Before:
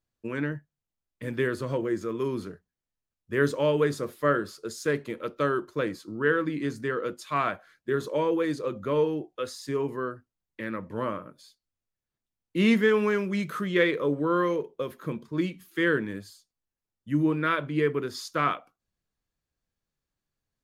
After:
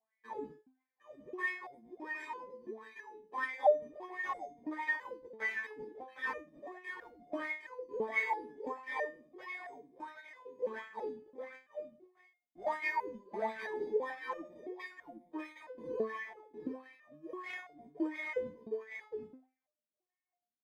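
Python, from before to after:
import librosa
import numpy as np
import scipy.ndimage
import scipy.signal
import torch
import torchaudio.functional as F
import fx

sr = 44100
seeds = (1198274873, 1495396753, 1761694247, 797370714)

p1 = fx.tilt_eq(x, sr, slope=3.0)
p2 = fx.rider(p1, sr, range_db=10, speed_s=2.0)
p3 = p1 + (p2 * 10.0 ** (0.0 / 20.0))
p4 = fx.sample_hold(p3, sr, seeds[0], rate_hz=1400.0, jitter_pct=0)
p5 = fx.wah_lfo(p4, sr, hz=1.5, low_hz=220.0, high_hz=2200.0, q=10.0)
p6 = p5 + fx.echo_single(p5, sr, ms=761, db=-6.0, dry=0)
p7 = fx.resonator_held(p6, sr, hz=3.0, low_hz=220.0, high_hz=710.0)
y = p7 * 10.0 ** (14.0 / 20.0)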